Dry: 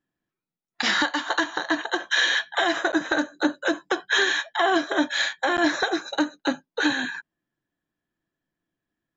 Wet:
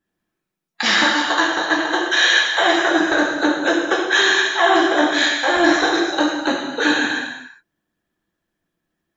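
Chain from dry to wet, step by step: gated-style reverb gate 430 ms falling, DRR -4.5 dB; harmonic-percussive split percussive +4 dB

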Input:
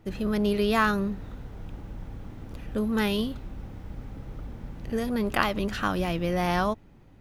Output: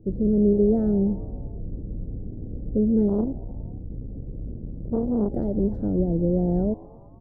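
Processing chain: inverse Chebyshev low-pass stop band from 1 kHz, stop band 40 dB; frequency-shifting echo 117 ms, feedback 58%, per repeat +120 Hz, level -23.5 dB; 3.08–5.33 s: transformer saturation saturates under 250 Hz; trim +6.5 dB

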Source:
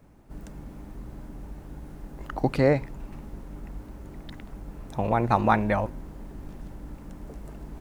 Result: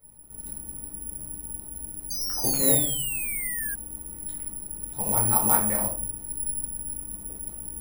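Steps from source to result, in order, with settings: simulated room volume 480 m³, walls furnished, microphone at 4.4 m; painted sound fall, 2.10–3.75 s, 1.6–6.4 kHz -23 dBFS; careless resampling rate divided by 4×, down none, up zero stuff; trim -14 dB

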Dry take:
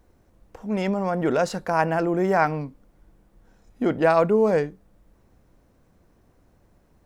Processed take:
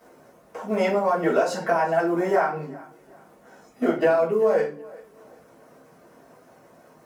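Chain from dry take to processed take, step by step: companding laws mixed up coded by mu; frequency weighting A; reverb removal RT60 0.67 s; high-pass 77 Hz; peaking EQ 3.4 kHz -8.5 dB 1.6 oct; compression 12:1, threshold -28 dBFS, peak gain reduction 12.5 dB; thinning echo 383 ms, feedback 32%, high-pass 210 Hz, level -21 dB; reverberation RT60 0.40 s, pre-delay 3 ms, DRR -7.5 dB

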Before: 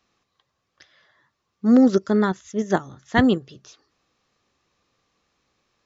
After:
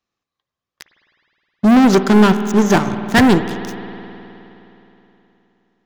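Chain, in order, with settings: waveshaping leveller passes 5; spring tank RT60 3.3 s, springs 52 ms, chirp 55 ms, DRR 9.5 dB; trim -2 dB

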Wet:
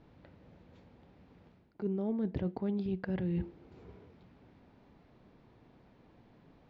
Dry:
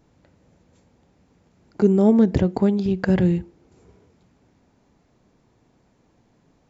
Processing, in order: reverse; compression 12:1, threshold -31 dBFS, peak gain reduction 20.5 dB; reverse; low-pass 4.1 kHz 24 dB/octave

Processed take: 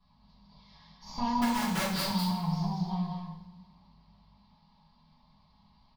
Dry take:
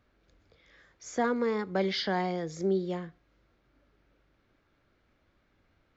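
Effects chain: comb filter that takes the minimum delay 4.7 ms; FFT filter 130 Hz 0 dB, 200 Hz +6 dB, 350 Hz -21 dB, 620 Hz -12 dB, 980 Hz +9 dB, 1.4 kHz -20 dB, 2.9 kHz -8 dB, 4.7 kHz +6 dB, 7.7 kHz -30 dB; compression 6:1, threshold -37 dBFS, peak gain reduction 13.5 dB; 1.40–2.04 s: integer overflow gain 33.5 dB; on a send: delay 201 ms -4 dB; on the sum: two-slope reverb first 0.61 s, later 2 s, from -18 dB, DRR -8.5 dB

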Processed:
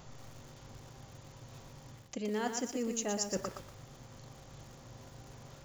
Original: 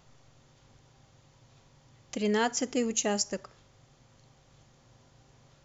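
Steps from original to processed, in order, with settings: peaking EQ 3 kHz -3.5 dB 2 oct; reverse; compression 12:1, threshold -41 dBFS, peak gain reduction 18 dB; reverse; bit-crushed delay 119 ms, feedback 35%, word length 10-bit, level -6 dB; trim +8.5 dB

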